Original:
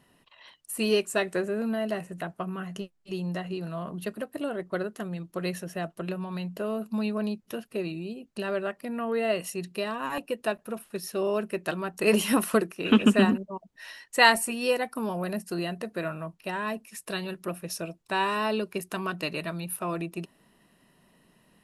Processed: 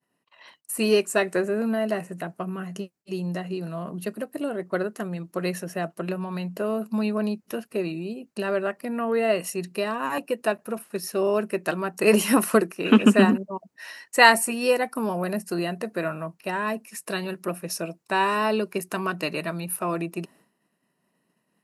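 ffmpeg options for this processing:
-filter_complex "[0:a]asettb=1/sr,asplit=3[a][b][c];[a]atrim=end=2.194[d];[b]atrim=start=2.19:end=4.61,asetpts=PTS-STARTPTS,afade=t=in:d=0.004:c=qsin,afade=t=out:st=2.416:d=0.004:c=qsin,equalizer=f=1.2k:w=0.57:g=-4[e];[c]atrim=start=4.606[f];[d][e]acrossfade=d=0.004:c1=hsin:c2=qsin[g];[g][f]acrossfade=d=0.004:c1=qsin:c2=hsin,highpass=150,agate=range=-33dB:threshold=-53dB:ratio=3:detection=peak,equalizer=f=3.4k:t=o:w=0.41:g=-7.5,volume=4.5dB"

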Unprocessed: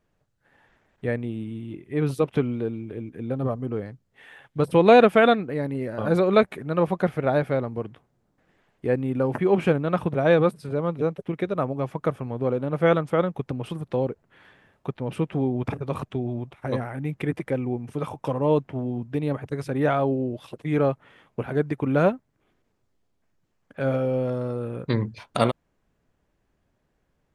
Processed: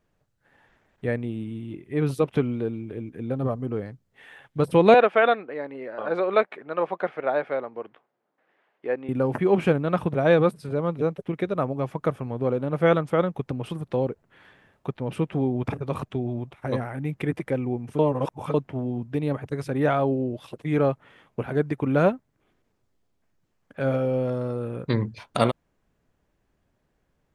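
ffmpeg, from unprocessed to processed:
-filter_complex "[0:a]asettb=1/sr,asplit=3[a][b][c];[a]atrim=end=4.944[d];[b]atrim=start=4.94:end=9.09,asetpts=PTS-STARTPTS,afade=t=in:d=0.004:c=qsin,afade=t=out:st=4.146:d=0.004:c=qsin,highpass=470,lowpass=2.9k[e];[c]atrim=start=9.086[f];[d][e]acrossfade=d=0.004:c1=hsin:c2=qsin[g];[g][f]acrossfade=d=0.004:c1=qsin:c2=hsin,asplit=3[h][i][j];[h]atrim=end=17.992[k];[i]atrim=start=17.988:end=18.542,asetpts=PTS-STARTPTS,areverse[l];[j]atrim=start=18.538[m];[k][l]acrossfade=d=0.004:c1=hsin:c2=hsin[n];[n][m]acrossfade=d=0.004:c1=hsin:c2=hsin"

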